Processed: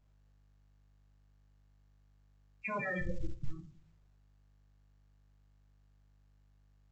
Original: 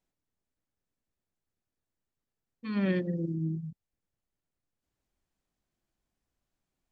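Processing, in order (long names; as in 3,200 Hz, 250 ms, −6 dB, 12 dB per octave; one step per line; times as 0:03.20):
adaptive Wiener filter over 41 samples
auto-filter high-pass saw down 6.1 Hz 650–3,400 Hz
0:02.68–0:03.49: comparator with hysteresis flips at −45.5 dBFS
downward compressor 10 to 1, threshold −49 dBFS, peak gain reduction 8.5 dB
mains hum 50 Hz, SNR 27 dB
spectral peaks only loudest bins 8
on a send at −5.5 dB: convolution reverb RT60 0.45 s, pre-delay 7 ms
on the sum: level +16 dB
mu-law 128 kbit/s 16,000 Hz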